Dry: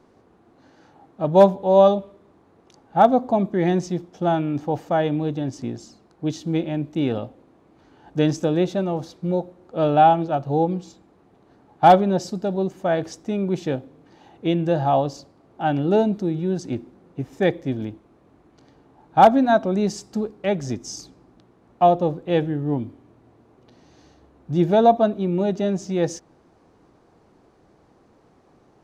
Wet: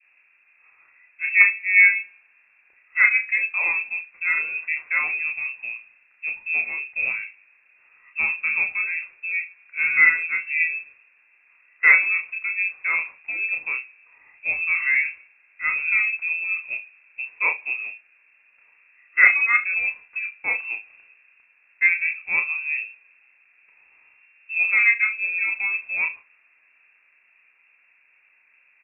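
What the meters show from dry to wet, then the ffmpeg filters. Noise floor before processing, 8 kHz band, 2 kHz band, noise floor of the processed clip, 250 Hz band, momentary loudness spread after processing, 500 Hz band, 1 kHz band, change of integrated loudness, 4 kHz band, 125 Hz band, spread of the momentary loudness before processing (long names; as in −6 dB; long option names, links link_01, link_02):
−57 dBFS, below −35 dB, +19.0 dB, −60 dBFS, below −30 dB, 15 LU, below −30 dB, −17.5 dB, +0.5 dB, below −25 dB, below −35 dB, 15 LU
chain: -filter_complex "[0:a]adynamicequalizer=threshold=0.02:dfrequency=1800:dqfactor=0.76:tfrequency=1800:tqfactor=0.76:attack=5:release=100:ratio=0.375:range=2:mode=boostabove:tftype=bell,asplit=2[link_01][link_02];[link_02]aecho=0:1:31|69:0.562|0.141[link_03];[link_01][link_03]amix=inputs=2:normalize=0,lowpass=frequency=2400:width_type=q:width=0.5098,lowpass=frequency=2400:width_type=q:width=0.6013,lowpass=frequency=2400:width_type=q:width=0.9,lowpass=frequency=2400:width_type=q:width=2.563,afreqshift=-2800,volume=-4.5dB"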